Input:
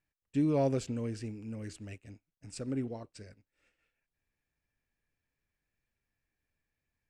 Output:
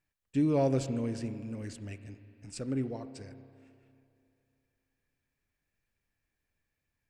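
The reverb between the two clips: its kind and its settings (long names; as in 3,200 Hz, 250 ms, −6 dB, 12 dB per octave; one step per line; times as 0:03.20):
spring reverb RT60 2.6 s, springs 30/38 ms, chirp 45 ms, DRR 11.5 dB
level +1.5 dB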